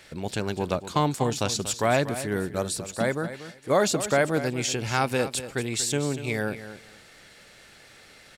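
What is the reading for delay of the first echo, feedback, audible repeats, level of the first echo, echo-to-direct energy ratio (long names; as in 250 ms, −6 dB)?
238 ms, 18%, 2, −12.5 dB, −12.5 dB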